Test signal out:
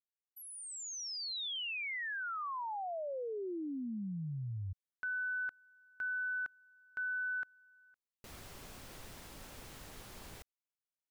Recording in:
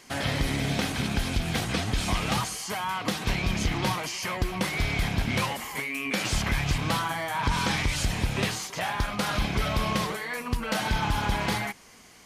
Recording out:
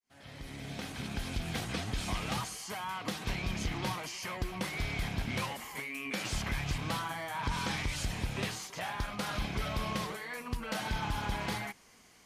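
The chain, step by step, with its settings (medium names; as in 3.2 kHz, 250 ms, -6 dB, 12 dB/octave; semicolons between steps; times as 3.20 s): fade-in on the opening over 1.44 s; trim -8 dB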